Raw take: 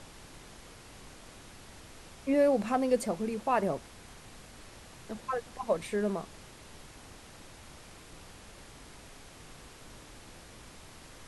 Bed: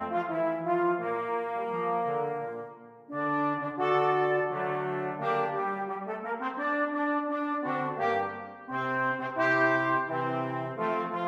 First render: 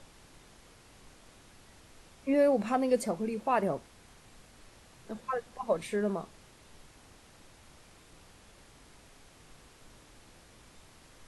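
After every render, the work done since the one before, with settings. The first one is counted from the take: noise print and reduce 6 dB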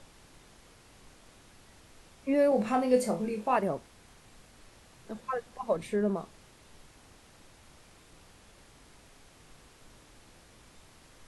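2.49–3.57 s: flutter echo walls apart 4.1 m, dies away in 0.25 s; 5.76–6.16 s: tilt shelf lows +3.5 dB, about 740 Hz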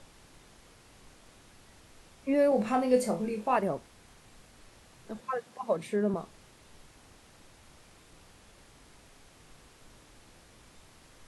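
5.21–6.14 s: high-pass 110 Hz 24 dB/octave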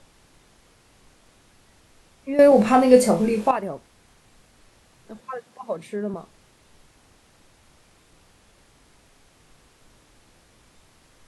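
2.39–3.51 s: gain +11.5 dB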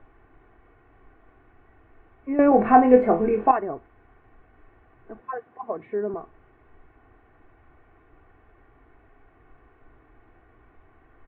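inverse Chebyshev low-pass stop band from 4.9 kHz, stop band 50 dB; comb 2.7 ms, depth 64%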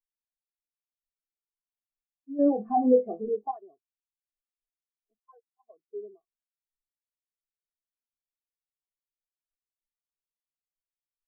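peak limiter -10.5 dBFS, peak gain reduction 8 dB; spectral contrast expander 2.5:1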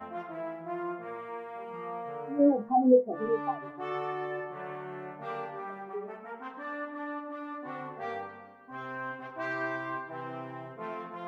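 add bed -9 dB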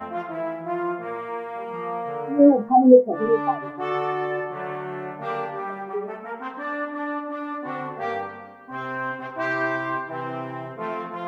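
trim +9 dB

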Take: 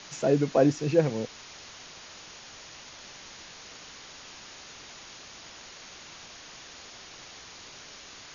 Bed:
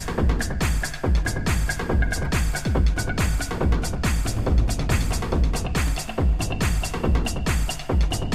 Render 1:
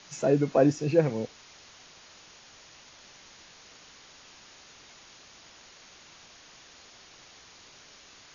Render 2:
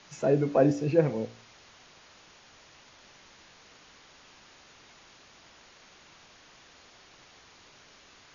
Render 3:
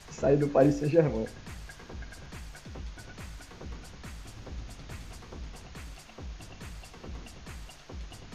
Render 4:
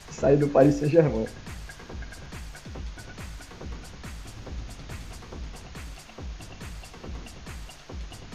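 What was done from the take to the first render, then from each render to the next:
noise print and reduce 6 dB
treble shelf 4.4 kHz -9 dB; de-hum 57.53 Hz, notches 14
add bed -21.5 dB
trim +4 dB

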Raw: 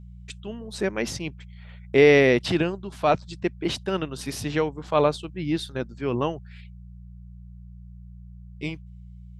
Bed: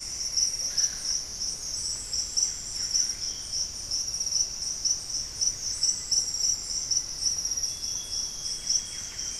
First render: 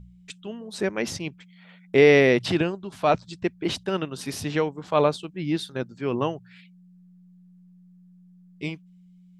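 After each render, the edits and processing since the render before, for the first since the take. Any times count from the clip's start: de-hum 60 Hz, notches 2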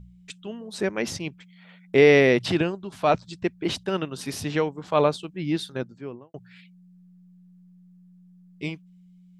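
5.70–6.34 s: studio fade out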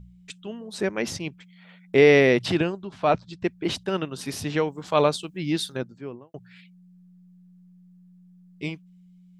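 2.85–3.41 s: distance through air 100 m; 4.68–5.77 s: treble shelf 3.7 kHz +9 dB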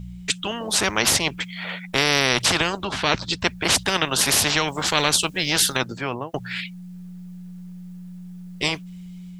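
level rider gain up to 4 dB; spectrum-flattening compressor 4:1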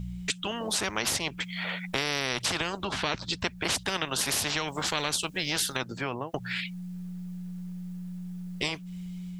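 compression 2.5:1, threshold -30 dBFS, peak gain reduction 10.5 dB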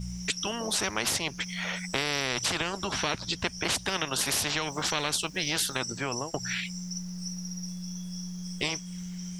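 add bed -13 dB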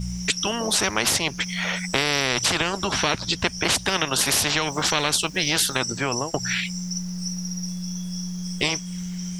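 trim +7 dB

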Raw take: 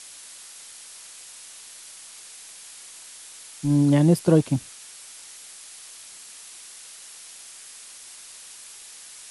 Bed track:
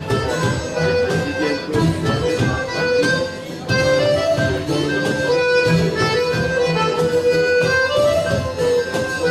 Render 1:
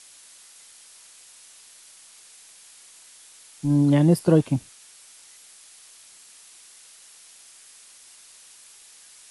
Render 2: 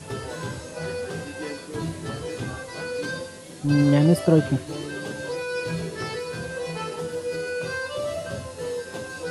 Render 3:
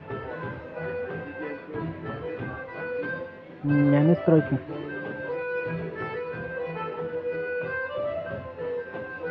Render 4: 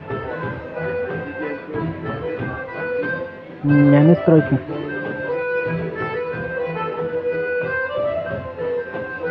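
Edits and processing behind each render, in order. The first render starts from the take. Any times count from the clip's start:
noise print and reduce 6 dB
add bed track -13.5 dB
low-pass 2.4 kHz 24 dB/octave; bass shelf 200 Hz -5.5 dB
trim +8 dB; peak limiter -2 dBFS, peak gain reduction 2.5 dB

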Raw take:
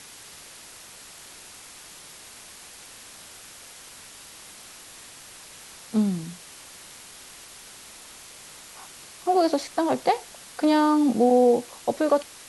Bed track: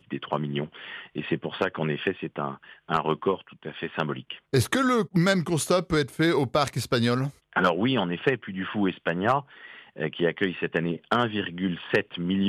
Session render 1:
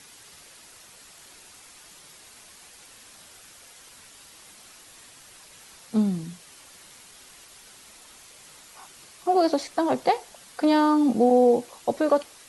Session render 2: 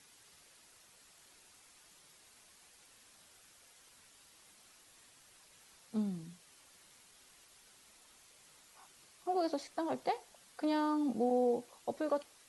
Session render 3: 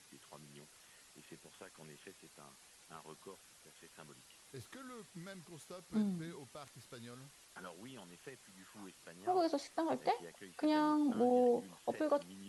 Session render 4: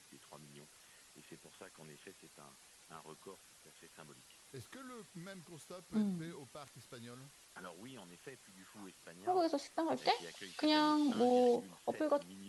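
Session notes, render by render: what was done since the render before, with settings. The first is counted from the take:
noise reduction 6 dB, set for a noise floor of -46 dBFS
trim -13 dB
add bed track -29 dB
9.97–11.56 s: peaking EQ 3.9 kHz +12 dB 1.8 oct

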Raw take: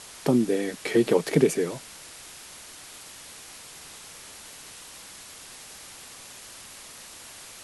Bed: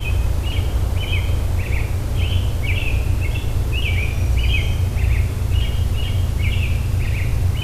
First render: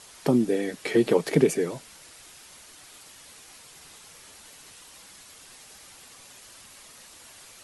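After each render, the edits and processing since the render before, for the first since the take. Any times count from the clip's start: noise reduction 6 dB, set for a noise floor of -45 dBFS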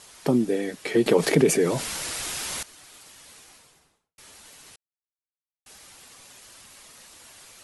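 1.06–2.63 s: level flattener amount 50%; 3.35–4.18 s: studio fade out; 4.76–5.66 s: mute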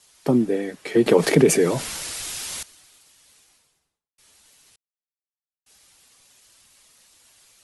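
three bands expanded up and down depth 40%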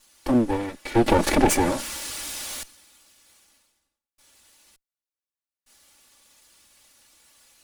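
comb filter that takes the minimum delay 3.5 ms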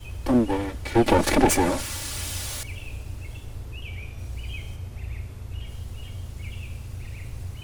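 add bed -16.5 dB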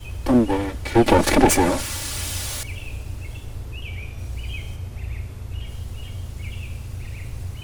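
trim +3.5 dB

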